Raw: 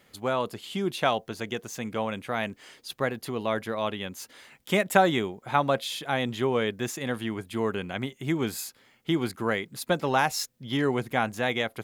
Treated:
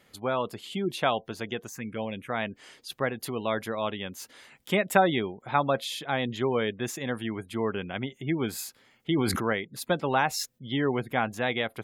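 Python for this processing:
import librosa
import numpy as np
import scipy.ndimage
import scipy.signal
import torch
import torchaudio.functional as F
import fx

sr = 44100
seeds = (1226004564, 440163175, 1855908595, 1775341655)

y = fx.high_shelf(x, sr, hz=4600.0, db=6.5, at=(3.0, 3.71))
y = fx.spec_gate(y, sr, threshold_db=-30, keep='strong')
y = fx.env_phaser(y, sr, low_hz=430.0, high_hz=1400.0, full_db=-25.0, at=(1.69, 2.3))
y = fx.sustainer(y, sr, db_per_s=25.0, at=(9.1, 9.53))
y = y * 10.0 ** (-1.0 / 20.0)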